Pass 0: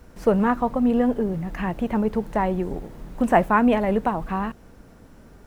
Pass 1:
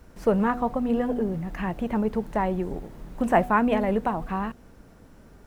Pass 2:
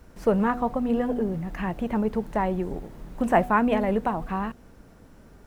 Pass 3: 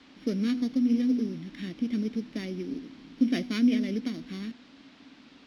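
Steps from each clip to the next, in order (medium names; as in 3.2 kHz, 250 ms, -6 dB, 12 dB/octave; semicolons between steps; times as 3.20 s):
de-hum 244.5 Hz, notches 3; trim -2.5 dB
no audible change
sorted samples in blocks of 8 samples; vowel filter i; band noise 280–4300 Hz -67 dBFS; trim +8 dB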